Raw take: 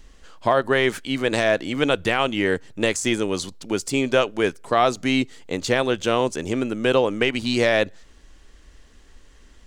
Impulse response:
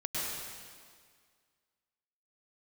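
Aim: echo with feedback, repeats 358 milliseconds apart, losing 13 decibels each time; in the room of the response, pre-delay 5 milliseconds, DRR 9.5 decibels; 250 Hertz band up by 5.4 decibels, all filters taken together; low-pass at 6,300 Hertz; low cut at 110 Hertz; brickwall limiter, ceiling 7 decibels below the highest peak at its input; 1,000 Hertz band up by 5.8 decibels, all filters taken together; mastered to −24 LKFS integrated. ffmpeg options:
-filter_complex "[0:a]highpass=110,lowpass=6300,equalizer=frequency=250:width_type=o:gain=6,equalizer=frequency=1000:width_type=o:gain=7.5,alimiter=limit=-8dB:level=0:latency=1,aecho=1:1:358|716|1074:0.224|0.0493|0.0108,asplit=2[link_01][link_02];[1:a]atrim=start_sample=2205,adelay=5[link_03];[link_02][link_03]afir=irnorm=-1:irlink=0,volume=-15.5dB[link_04];[link_01][link_04]amix=inputs=2:normalize=0,volume=-3.5dB"

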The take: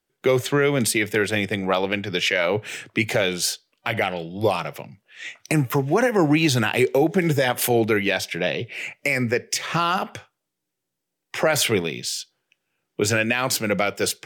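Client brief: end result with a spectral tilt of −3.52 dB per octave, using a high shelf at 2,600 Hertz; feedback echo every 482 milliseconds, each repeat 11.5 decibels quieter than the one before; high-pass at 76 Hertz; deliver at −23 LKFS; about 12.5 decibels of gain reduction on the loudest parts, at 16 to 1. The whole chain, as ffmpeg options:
ffmpeg -i in.wav -af "highpass=76,highshelf=frequency=2600:gain=8.5,acompressor=threshold=-25dB:ratio=16,aecho=1:1:482|964|1446:0.266|0.0718|0.0194,volume=6.5dB" out.wav

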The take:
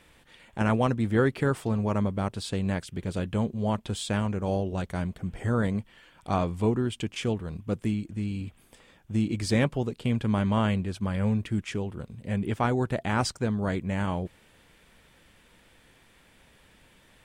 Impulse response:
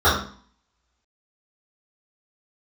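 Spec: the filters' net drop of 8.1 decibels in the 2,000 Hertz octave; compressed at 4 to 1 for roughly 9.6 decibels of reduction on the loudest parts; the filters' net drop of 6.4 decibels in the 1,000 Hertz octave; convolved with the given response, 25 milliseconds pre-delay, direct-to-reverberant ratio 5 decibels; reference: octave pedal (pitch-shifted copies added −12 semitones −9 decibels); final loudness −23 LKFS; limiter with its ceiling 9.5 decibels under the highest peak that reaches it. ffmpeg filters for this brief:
-filter_complex "[0:a]equalizer=frequency=1000:width_type=o:gain=-6.5,equalizer=frequency=2000:width_type=o:gain=-8.5,acompressor=threshold=-32dB:ratio=4,alimiter=level_in=8dB:limit=-24dB:level=0:latency=1,volume=-8dB,asplit=2[link_01][link_02];[1:a]atrim=start_sample=2205,adelay=25[link_03];[link_02][link_03]afir=irnorm=-1:irlink=0,volume=-28.5dB[link_04];[link_01][link_04]amix=inputs=2:normalize=0,asplit=2[link_05][link_06];[link_06]asetrate=22050,aresample=44100,atempo=2,volume=-9dB[link_07];[link_05][link_07]amix=inputs=2:normalize=0,volume=15.5dB"

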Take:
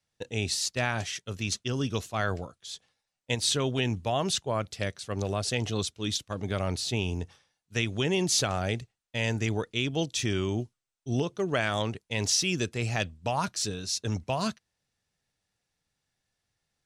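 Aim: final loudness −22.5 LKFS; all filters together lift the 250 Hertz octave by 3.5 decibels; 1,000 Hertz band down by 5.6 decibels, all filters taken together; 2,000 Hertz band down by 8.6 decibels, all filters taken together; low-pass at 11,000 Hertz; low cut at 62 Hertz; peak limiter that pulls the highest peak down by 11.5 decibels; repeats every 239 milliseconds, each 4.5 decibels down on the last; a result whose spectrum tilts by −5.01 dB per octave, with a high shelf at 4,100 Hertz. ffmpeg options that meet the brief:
ffmpeg -i in.wav -af "highpass=62,lowpass=11000,equalizer=frequency=250:width_type=o:gain=5,equalizer=frequency=1000:width_type=o:gain=-6,equalizer=frequency=2000:width_type=o:gain=-7.5,highshelf=frequency=4100:gain=-9,alimiter=level_in=2dB:limit=-24dB:level=0:latency=1,volume=-2dB,aecho=1:1:239|478|717|956|1195|1434|1673|1912|2151:0.596|0.357|0.214|0.129|0.0772|0.0463|0.0278|0.0167|0.01,volume=12.5dB" out.wav

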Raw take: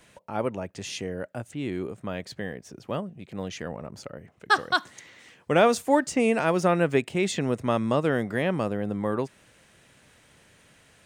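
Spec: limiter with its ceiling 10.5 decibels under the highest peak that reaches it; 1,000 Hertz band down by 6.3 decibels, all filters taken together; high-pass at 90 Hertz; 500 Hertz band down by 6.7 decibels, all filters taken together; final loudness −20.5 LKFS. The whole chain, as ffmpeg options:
ffmpeg -i in.wav -af "highpass=90,equalizer=frequency=500:width_type=o:gain=-6.5,equalizer=frequency=1000:width_type=o:gain=-6.5,volume=14dB,alimiter=limit=-8dB:level=0:latency=1" out.wav

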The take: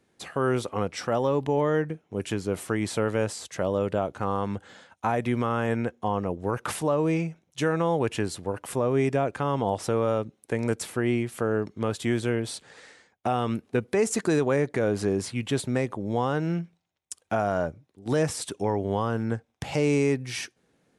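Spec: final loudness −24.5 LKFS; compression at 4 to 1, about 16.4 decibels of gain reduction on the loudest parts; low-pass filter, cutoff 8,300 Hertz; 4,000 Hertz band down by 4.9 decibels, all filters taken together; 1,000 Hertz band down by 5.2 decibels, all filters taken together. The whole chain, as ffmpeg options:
ffmpeg -i in.wav -af "lowpass=8300,equalizer=frequency=1000:width_type=o:gain=-7,equalizer=frequency=4000:width_type=o:gain=-6,acompressor=threshold=-41dB:ratio=4,volume=19dB" out.wav

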